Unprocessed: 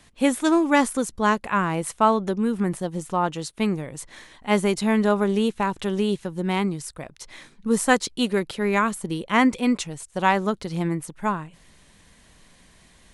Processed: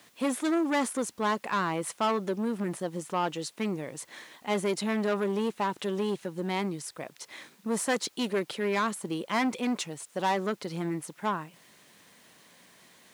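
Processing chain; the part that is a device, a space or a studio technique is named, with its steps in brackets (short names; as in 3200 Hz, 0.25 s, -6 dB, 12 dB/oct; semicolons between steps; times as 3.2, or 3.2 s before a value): open-reel tape (soft clip -20.5 dBFS, distortion -9 dB; bell 120 Hz +4.5 dB 1.13 oct; white noise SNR 33 dB); HPF 270 Hz 12 dB/oct; high shelf 7400 Hz -4.5 dB; gain -1 dB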